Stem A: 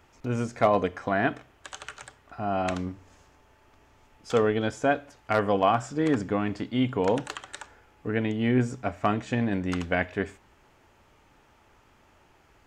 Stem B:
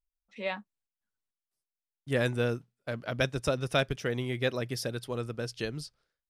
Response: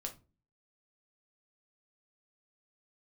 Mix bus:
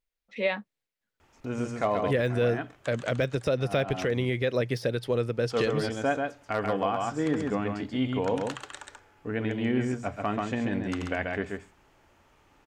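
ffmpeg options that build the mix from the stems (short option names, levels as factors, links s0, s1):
-filter_complex "[0:a]bandreject=f=60:t=h:w=6,bandreject=f=120:t=h:w=6,bandreject=f=180:t=h:w=6,adelay=1200,volume=0.708,asplit=2[s0][s1];[s1]volume=0.596[s2];[1:a]deesser=0.9,equalizer=f=125:t=o:w=1:g=7,equalizer=f=250:t=o:w=1:g=4,equalizer=f=500:t=o:w=1:g=11,equalizer=f=2000:t=o:w=1:g=9,equalizer=f=4000:t=o:w=1:g=5,volume=0.944,asplit=2[s3][s4];[s4]apad=whole_len=611287[s5];[s0][s5]sidechaincompress=threshold=0.0224:ratio=8:attack=32:release=173[s6];[s2]aecho=0:1:135:1[s7];[s6][s3][s7]amix=inputs=3:normalize=0,alimiter=limit=0.15:level=0:latency=1:release=121"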